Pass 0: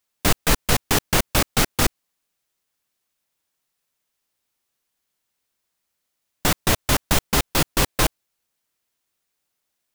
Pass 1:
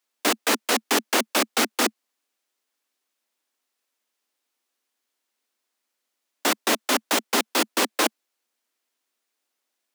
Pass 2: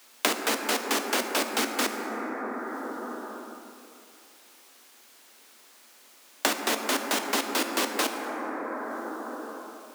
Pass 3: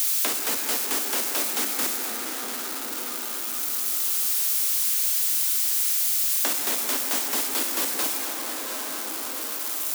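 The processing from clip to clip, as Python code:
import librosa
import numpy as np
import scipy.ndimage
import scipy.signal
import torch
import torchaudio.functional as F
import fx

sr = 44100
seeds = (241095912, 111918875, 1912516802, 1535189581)

y1 = scipy.signal.sosfilt(scipy.signal.butter(16, 220.0, 'highpass', fs=sr, output='sos'), x)
y1 = fx.high_shelf(y1, sr, hz=10000.0, db=-6.0)
y2 = fx.rev_plate(y1, sr, seeds[0], rt60_s=2.5, hf_ratio=0.3, predelay_ms=0, drr_db=4.5)
y2 = fx.band_squash(y2, sr, depth_pct=100)
y2 = y2 * librosa.db_to_amplitude(-5.5)
y3 = y2 + 0.5 * 10.0 ** (-14.0 / 20.0) * np.diff(np.sign(y2), prepend=np.sign(y2[:1]))
y3 = fx.echo_feedback(y3, sr, ms=693, feedback_pct=47, wet_db=-12)
y3 = y3 * librosa.db_to_amplitude(-5.5)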